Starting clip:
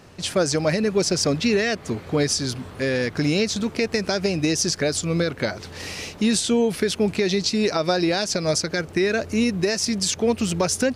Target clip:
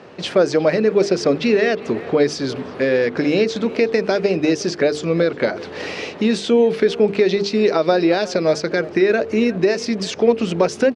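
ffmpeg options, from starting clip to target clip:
-filter_complex "[0:a]equalizer=f=440:t=o:w=1.1:g=6,bandreject=f=50:t=h:w=6,bandreject=f=100:t=h:w=6,bandreject=f=150:t=h:w=6,bandreject=f=200:t=h:w=6,bandreject=f=250:t=h:w=6,bandreject=f=300:t=h:w=6,bandreject=f=350:t=h:w=6,bandreject=f=400:t=h:w=6,bandreject=f=450:t=h:w=6,asplit=2[a][b];[b]acompressor=threshold=-25dB:ratio=6,volume=0.5dB[c];[a][c]amix=inputs=2:normalize=0,highpass=180,lowpass=3.4k,asplit=2[d][e];[e]adelay=360,highpass=300,lowpass=3.4k,asoftclip=type=hard:threshold=-12.5dB,volume=-17dB[f];[d][f]amix=inputs=2:normalize=0"

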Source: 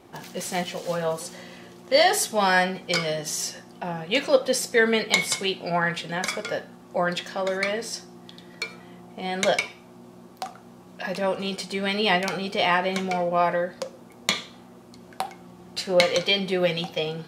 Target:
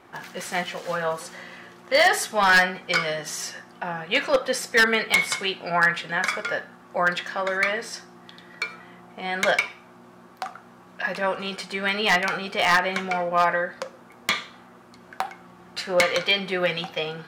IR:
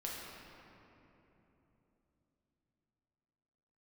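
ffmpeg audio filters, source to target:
-af "equalizer=f=1.5k:w=0.83:g=12.5,aeval=exprs='0.531*(abs(mod(val(0)/0.531+3,4)-2)-1)':c=same,volume=-4.5dB"

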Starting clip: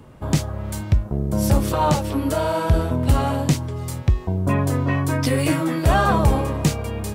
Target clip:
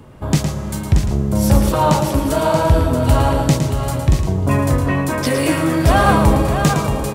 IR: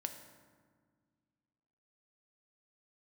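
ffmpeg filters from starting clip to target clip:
-filter_complex "[0:a]aecho=1:1:630:0.447,asplit=2[a][b];[1:a]atrim=start_sample=2205,asetrate=28665,aresample=44100,adelay=111[c];[b][c]afir=irnorm=-1:irlink=0,volume=-7.5dB[d];[a][d]amix=inputs=2:normalize=0,volume=3.5dB"

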